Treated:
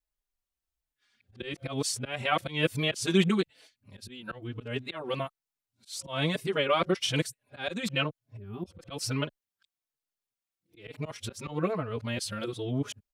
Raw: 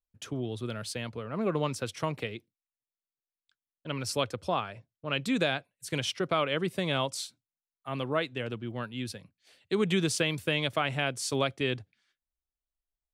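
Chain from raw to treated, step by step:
played backwards from end to start
gain on a spectral selection 0:08.36–0:08.65, 450–11,000 Hz −24 dB
volume swells 184 ms
barber-pole flanger 4.2 ms −1.1 Hz
level +5.5 dB

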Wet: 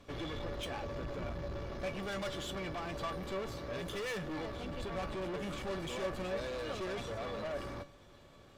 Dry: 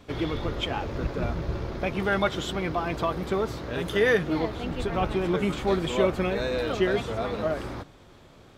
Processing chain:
tube saturation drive 31 dB, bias 0.35
tuned comb filter 570 Hz, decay 0.18 s, harmonics all, mix 80%
level +6.5 dB

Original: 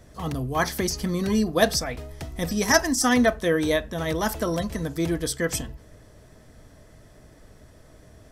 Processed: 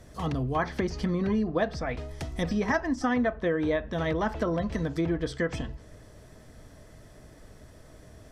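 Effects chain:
treble cut that deepens with the level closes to 2,100 Hz, closed at −21.5 dBFS
downward compressor 5 to 1, threshold −23 dBFS, peak gain reduction 9.5 dB

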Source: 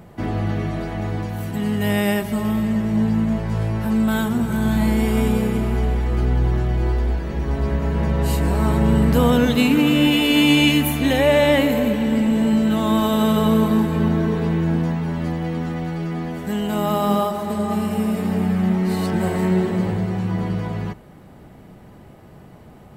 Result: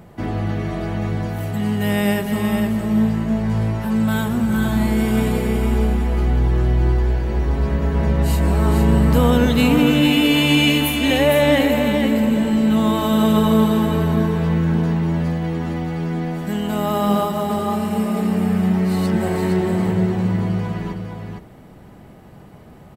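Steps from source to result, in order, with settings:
single-tap delay 460 ms −5.5 dB

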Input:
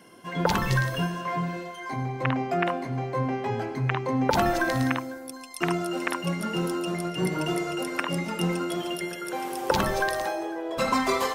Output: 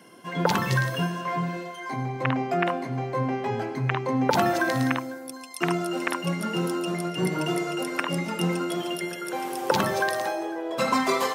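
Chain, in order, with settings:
high-pass filter 110 Hz 24 dB per octave
level +1 dB

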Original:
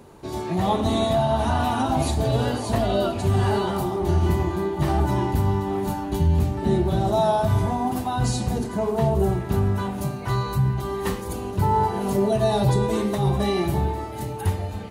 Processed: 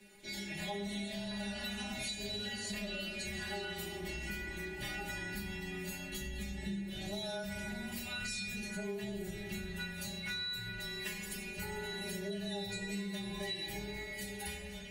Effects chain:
high shelf with overshoot 1,500 Hz +9 dB, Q 3
on a send at −5 dB: convolution reverb RT60 1.1 s, pre-delay 3 ms
on the sum: frequency shifter −20 Hz
stiff-string resonator 200 Hz, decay 0.4 s, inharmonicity 0.002
downward compressor, threshold −38 dBFS, peak gain reduction 11 dB
level +1 dB

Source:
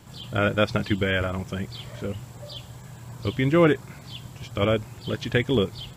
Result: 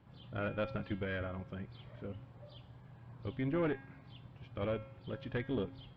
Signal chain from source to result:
tuned comb filter 270 Hz, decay 0.74 s, mix 70%
tube saturation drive 24 dB, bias 0.4
high-frequency loss of the air 380 metres
level −1 dB

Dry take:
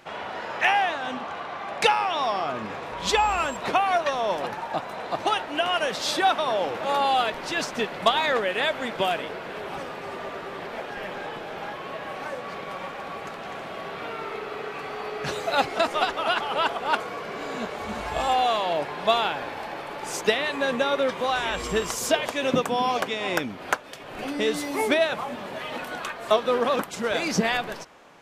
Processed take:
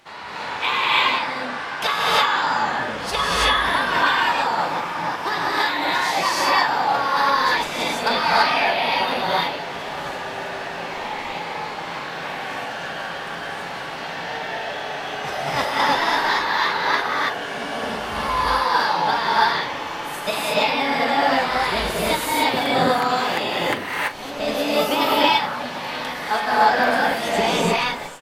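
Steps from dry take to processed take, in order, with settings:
dynamic equaliser 5,800 Hz, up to −7 dB, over −46 dBFS, Q 1.2
formants moved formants +5 semitones
double-tracking delay 41 ms −13 dB
reverb whose tail is shaped and stops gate 360 ms rising, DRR −7 dB
level −2.5 dB

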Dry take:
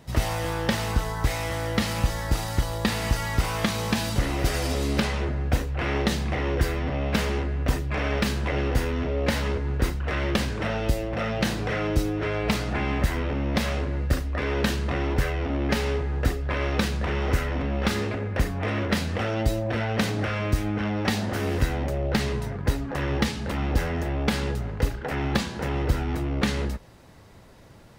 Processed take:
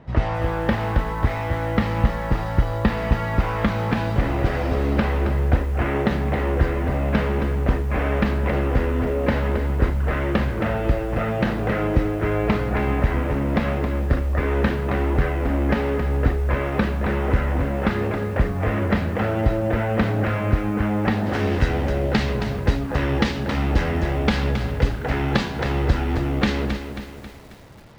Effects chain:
low-pass filter 1,900 Hz 12 dB per octave, from 0:21.26 4,400 Hz
feedback echo at a low word length 270 ms, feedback 55%, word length 8 bits, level −8.5 dB
level +4 dB

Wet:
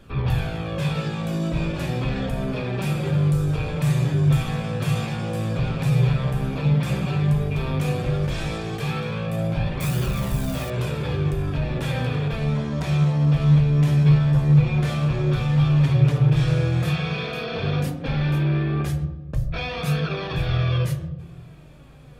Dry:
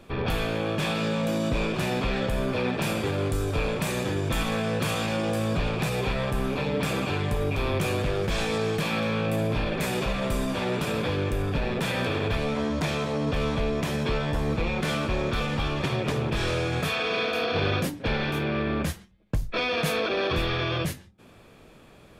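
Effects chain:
0:09.80–0:10.70: spike at every zero crossing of −25.5 dBFS
flanger 0.1 Hz, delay 0.6 ms, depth 8.1 ms, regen +44%
in parallel at −0.5 dB: brickwall limiter −28 dBFS, peak gain reduction 9.5 dB
on the sum: mains hum 50 Hz, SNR 32 dB
on a send at −7.5 dB: convolution reverb RT60 1.2 s, pre-delay 3 ms
on the sum: level −3 dB

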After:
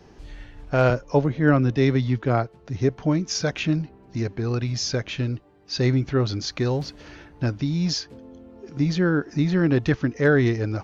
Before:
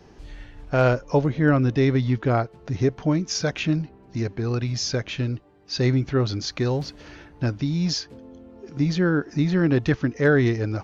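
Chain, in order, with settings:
0:00.90–0:03.03: multiband upward and downward expander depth 40%

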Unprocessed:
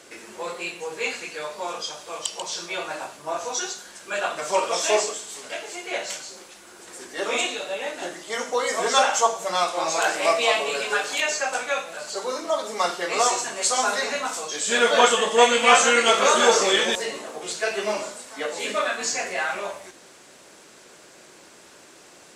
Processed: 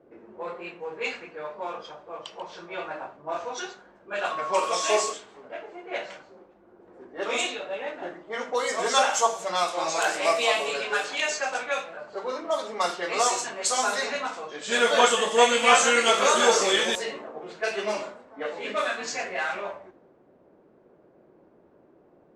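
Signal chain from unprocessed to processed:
low-pass that shuts in the quiet parts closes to 490 Hz, open at −19 dBFS
0:04.30–0:05.11: steady tone 1,100 Hz −27 dBFS
level −2.5 dB

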